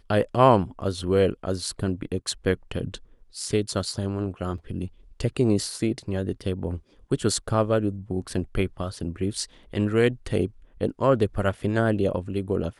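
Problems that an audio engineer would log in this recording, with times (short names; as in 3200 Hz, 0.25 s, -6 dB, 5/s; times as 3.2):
4.58 gap 2.1 ms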